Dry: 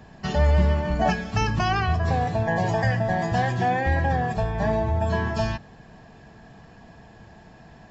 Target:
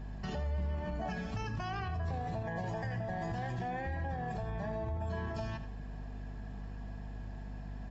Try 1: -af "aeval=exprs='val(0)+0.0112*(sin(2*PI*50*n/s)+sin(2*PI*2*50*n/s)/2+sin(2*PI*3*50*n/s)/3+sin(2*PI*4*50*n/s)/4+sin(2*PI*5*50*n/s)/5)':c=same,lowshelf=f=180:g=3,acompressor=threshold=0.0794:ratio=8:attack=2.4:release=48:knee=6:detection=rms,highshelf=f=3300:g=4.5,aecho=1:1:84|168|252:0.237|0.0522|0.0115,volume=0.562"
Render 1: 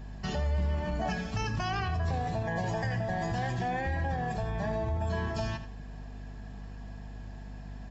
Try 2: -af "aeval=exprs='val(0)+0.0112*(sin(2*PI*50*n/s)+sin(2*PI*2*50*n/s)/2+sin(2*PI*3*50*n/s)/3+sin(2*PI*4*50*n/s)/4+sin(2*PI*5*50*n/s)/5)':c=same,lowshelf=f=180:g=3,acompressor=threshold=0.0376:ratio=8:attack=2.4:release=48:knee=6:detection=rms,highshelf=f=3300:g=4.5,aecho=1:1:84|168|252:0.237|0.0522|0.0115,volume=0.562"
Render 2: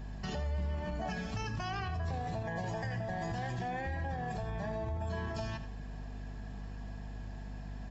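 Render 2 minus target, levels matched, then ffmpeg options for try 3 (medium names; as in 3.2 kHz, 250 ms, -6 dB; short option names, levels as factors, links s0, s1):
8 kHz band +5.5 dB
-af "aeval=exprs='val(0)+0.0112*(sin(2*PI*50*n/s)+sin(2*PI*2*50*n/s)/2+sin(2*PI*3*50*n/s)/3+sin(2*PI*4*50*n/s)/4+sin(2*PI*5*50*n/s)/5)':c=same,lowshelf=f=180:g=3,acompressor=threshold=0.0376:ratio=8:attack=2.4:release=48:knee=6:detection=rms,highshelf=f=3300:g=-3,aecho=1:1:84|168|252:0.237|0.0522|0.0115,volume=0.562"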